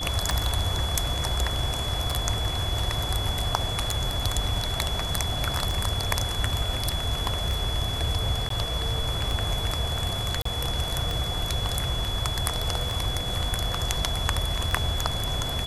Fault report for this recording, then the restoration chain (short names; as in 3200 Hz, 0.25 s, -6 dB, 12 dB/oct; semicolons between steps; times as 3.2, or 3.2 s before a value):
tick 33 1/3 rpm
tone 3400 Hz -31 dBFS
8.49–8.5 gap 13 ms
10.42–10.45 gap 34 ms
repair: de-click; notch 3400 Hz, Q 30; interpolate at 8.49, 13 ms; interpolate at 10.42, 34 ms